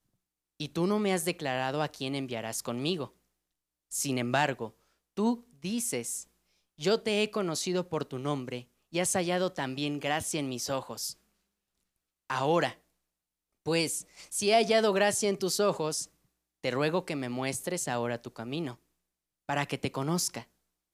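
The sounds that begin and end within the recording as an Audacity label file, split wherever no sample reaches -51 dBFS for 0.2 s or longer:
0.600000	3.090000	sound
3.910000	4.710000	sound
5.170000	6.240000	sound
6.780000	8.640000	sound
8.920000	11.130000	sound
12.300000	12.760000	sound
13.660000	16.070000	sound
16.640000	18.750000	sound
19.490000	20.440000	sound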